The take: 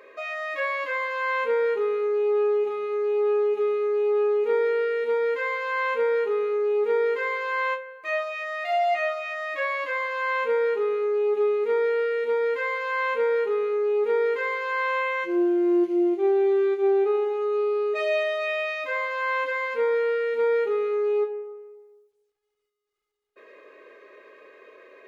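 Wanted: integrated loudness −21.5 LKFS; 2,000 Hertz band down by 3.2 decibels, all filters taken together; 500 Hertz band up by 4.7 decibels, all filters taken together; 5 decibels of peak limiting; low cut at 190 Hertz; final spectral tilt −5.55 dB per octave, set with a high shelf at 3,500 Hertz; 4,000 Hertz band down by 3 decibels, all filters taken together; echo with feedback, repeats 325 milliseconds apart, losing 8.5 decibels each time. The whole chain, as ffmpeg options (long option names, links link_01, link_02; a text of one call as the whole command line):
ffmpeg -i in.wav -af "highpass=190,equalizer=frequency=500:width_type=o:gain=6,equalizer=frequency=2000:width_type=o:gain=-4.5,highshelf=frequency=3500:gain=4.5,equalizer=frequency=4000:width_type=o:gain=-5,alimiter=limit=-14.5dB:level=0:latency=1,aecho=1:1:325|650|975|1300:0.376|0.143|0.0543|0.0206,volume=-0.5dB" out.wav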